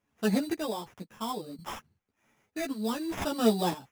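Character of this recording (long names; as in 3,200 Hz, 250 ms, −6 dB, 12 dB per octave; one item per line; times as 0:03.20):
aliases and images of a low sample rate 4,300 Hz, jitter 0%
chopped level 0.63 Hz, depth 65%, duty 35%
a shimmering, thickened sound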